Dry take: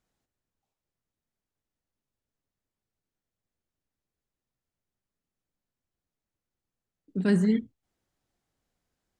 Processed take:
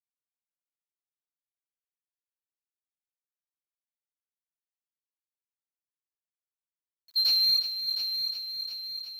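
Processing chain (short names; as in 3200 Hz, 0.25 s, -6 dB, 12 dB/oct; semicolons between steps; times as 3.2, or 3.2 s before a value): band-swap scrambler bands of 4000 Hz; low-pass opened by the level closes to 2400 Hz, open at -30.5 dBFS; harmonic-percussive split harmonic +4 dB; compressor 10:1, threshold -19 dBFS, peak gain reduction 6 dB; overdrive pedal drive 18 dB, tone 2300 Hz, clips at -12.5 dBFS; requantised 10-bit, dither none; on a send: multi-head echo 0.356 s, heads first and second, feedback 61%, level -10 dB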